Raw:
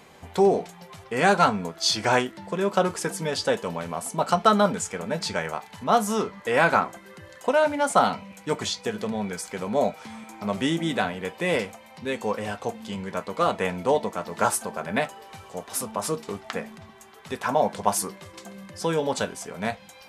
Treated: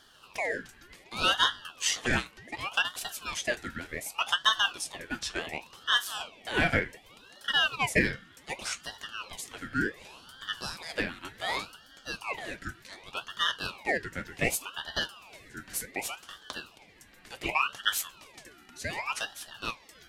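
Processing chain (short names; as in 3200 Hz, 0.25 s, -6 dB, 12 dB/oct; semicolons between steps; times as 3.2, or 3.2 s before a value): Chebyshev high-pass 530 Hz, order 5; ring modulator with a swept carrier 1600 Hz, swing 50%, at 0.67 Hz; gain -2 dB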